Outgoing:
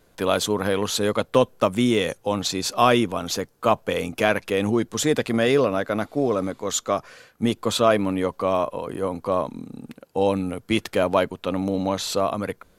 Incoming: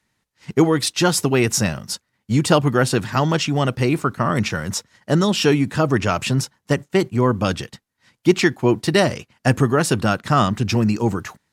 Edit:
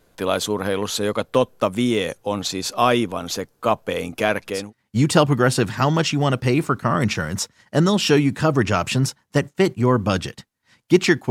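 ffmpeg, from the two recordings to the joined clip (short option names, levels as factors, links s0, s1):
-filter_complex "[0:a]apad=whole_dur=11.3,atrim=end=11.3,atrim=end=4.73,asetpts=PTS-STARTPTS[s0];[1:a]atrim=start=1.8:end=8.65,asetpts=PTS-STARTPTS[s1];[s0][s1]acrossfade=d=0.28:c1=tri:c2=tri"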